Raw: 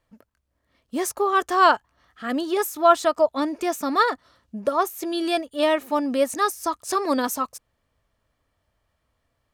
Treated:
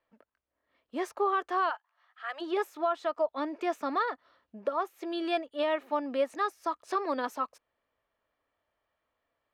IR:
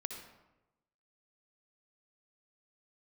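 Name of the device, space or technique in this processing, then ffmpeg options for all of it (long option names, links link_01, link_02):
DJ mixer with the lows and highs turned down: -filter_complex "[0:a]acrossover=split=290 3800:gain=0.158 1 0.1[link_01][link_02][link_03];[link_01][link_02][link_03]amix=inputs=3:normalize=0,alimiter=limit=-14.5dB:level=0:latency=1:release=308,asplit=3[link_04][link_05][link_06];[link_04]afade=type=out:start_time=1.69:duration=0.02[link_07];[link_05]highpass=frequency=730:width=0.5412,highpass=frequency=730:width=1.3066,afade=type=in:start_time=1.69:duration=0.02,afade=type=out:start_time=2.4:duration=0.02[link_08];[link_06]afade=type=in:start_time=2.4:duration=0.02[link_09];[link_07][link_08][link_09]amix=inputs=3:normalize=0,volume=-4.5dB"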